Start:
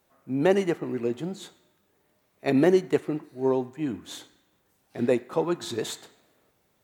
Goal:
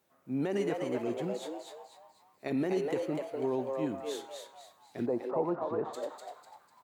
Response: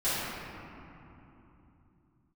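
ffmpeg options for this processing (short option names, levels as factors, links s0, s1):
-filter_complex "[0:a]highpass=95,alimiter=limit=0.112:level=0:latency=1:release=42,asplit=3[s0][s1][s2];[s0]afade=t=out:st=5.05:d=0.02[s3];[s1]lowpass=f=870:t=q:w=1.8,afade=t=in:st=5.05:d=0.02,afade=t=out:st=5.93:d=0.02[s4];[s2]afade=t=in:st=5.93:d=0.02[s5];[s3][s4][s5]amix=inputs=3:normalize=0,asplit=2[s6][s7];[s7]asplit=5[s8][s9][s10][s11][s12];[s8]adelay=248,afreqshift=140,volume=0.631[s13];[s9]adelay=496,afreqshift=280,volume=0.24[s14];[s10]adelay=744,afreqshift=420,volume=0.0912[s15];[s11]adelay=992,afreqshift=560,volume=0.0347[s16];[s12]adelay=1240,afreqshift=700,volume=0.0132[s17];[s13][s14][s15][s16][s17]amix=inputs=5:normalize=0[s18];[s6][s18]amix=inputs=2:normalize=0,volume=0.562"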